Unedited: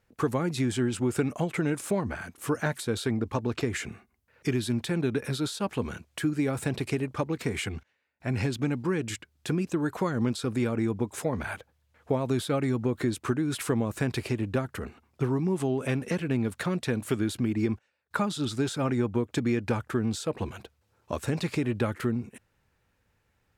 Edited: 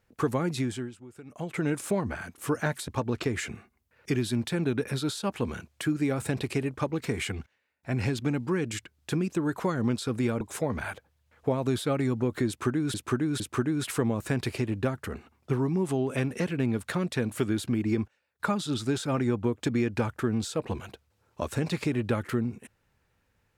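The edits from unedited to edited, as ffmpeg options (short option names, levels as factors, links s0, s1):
-filter_complex "[0:a]asplit=7[s0][s1][s2][s3][s4][s5][s6];[s0]atrim=end=0.96,asetpts=PTS-STARTPTS,afade=t=out:st=0.53:d=0.43:silence=0.0944061[s7];[s1]atrim=start=0.96:end=1.25,asetpts=PTS-STARTPTS,volume=0.0944[s8];[s2]atrim=start=1.25:end=2.882,asetpts=PTS-STARTPTS,afade=t=in:d=0.43:silence=0.0944061[s9];[s3]atrim=start=3.248:end=10.782[s10];[s4]atrim=start=11.038:end=13.572[s11];[s5]atrim=start=13.108:end=13.572[s12];[s6]atrim=start=13.108[s13];[s7][s8][s9]concat=n=3:v=0:a=1[s14];[s14][s10]acrossfade=d=0.004:c1=hsin:c2=hsin[s15];[s15][s11]acrossfade=d=0.004:c1=hsin:c2=hsin[s16];[s16][s12]acrossfade=d=0.004:c1=hsin:c2=hsin[s17];[s17][s13]acrossfade=d=0.004:c1=hsin:c2=hsin"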